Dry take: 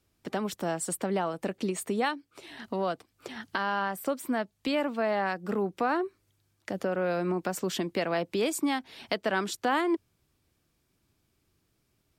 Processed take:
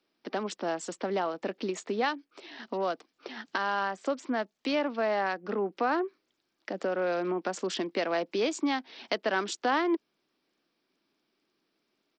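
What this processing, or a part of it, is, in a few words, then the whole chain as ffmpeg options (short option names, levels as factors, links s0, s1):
Bluetooth headset: -af "highpass=f=230:w=0.5412,highpass=f=230:w=1.3066,aresample=16000,aresample=44100" -ar 44100 -c:a sbc -b:a 64k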